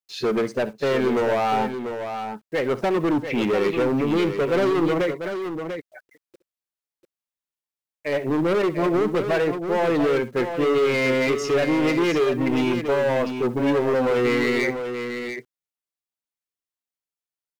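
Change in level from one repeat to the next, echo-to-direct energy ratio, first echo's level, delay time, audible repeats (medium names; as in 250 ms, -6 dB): no regular repeats, -7.5 dB, -16.5 dB, 65 ms, 2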